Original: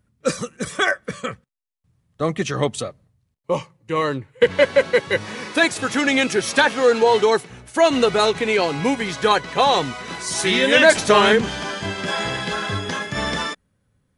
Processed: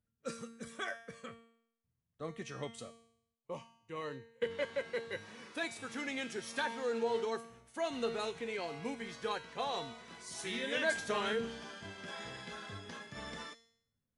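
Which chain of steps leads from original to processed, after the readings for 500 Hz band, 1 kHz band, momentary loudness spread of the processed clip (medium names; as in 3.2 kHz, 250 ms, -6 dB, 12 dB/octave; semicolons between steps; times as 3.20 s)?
-20.0 dB, -20.5 dB, 13 LU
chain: feedback comb 230 Hz, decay 0.68 s, harmonics all, mix 80%; trim -8.5 dB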